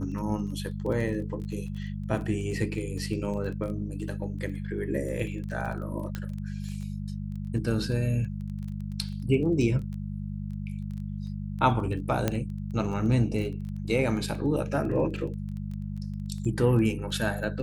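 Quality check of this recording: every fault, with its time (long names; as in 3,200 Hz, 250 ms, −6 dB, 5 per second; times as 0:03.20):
surface crackle 14 per second −35 dBFS
mains hum 50 Hz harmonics 4 −34 dBFS
0:06.15: click −19 dBFS
0:12.28: click −11 dBFS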